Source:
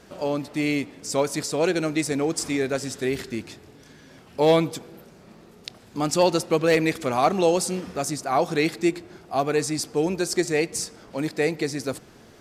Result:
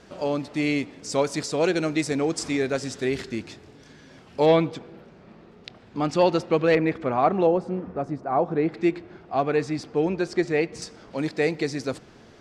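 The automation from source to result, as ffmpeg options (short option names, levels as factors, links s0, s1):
-af "asetnsamples=n=441:p=0,asendcmd='4.46 lowpass f 3300;6.75 lowpass f 1800;7.47 lowpass f 1100;8.74 lowpass f 2900;10.82 lowpass f 5800',lowpass=6900"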